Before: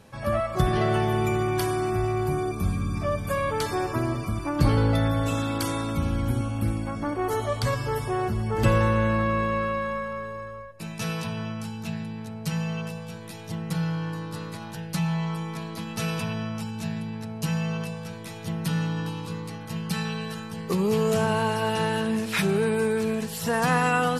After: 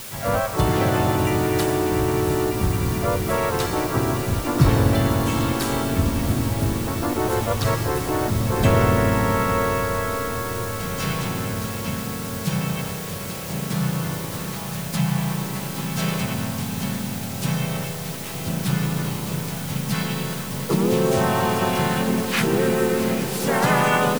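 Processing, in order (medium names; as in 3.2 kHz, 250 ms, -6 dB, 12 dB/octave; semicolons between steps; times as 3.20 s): harmony voices -4 st -9 dB, -3 st -2 dB, +3 st -3 dB; echo that smears into a reverb 764 ms, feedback 74%, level -11 dB; word length cut 6-bit, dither triangular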